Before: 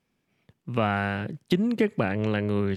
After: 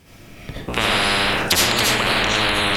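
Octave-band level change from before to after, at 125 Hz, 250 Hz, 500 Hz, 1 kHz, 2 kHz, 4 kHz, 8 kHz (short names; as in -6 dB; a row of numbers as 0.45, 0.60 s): 0.0 dB, -1.5 dB, +3.0 dB, +10.5 dB, +14.0 dB, +23.0 dB, n/a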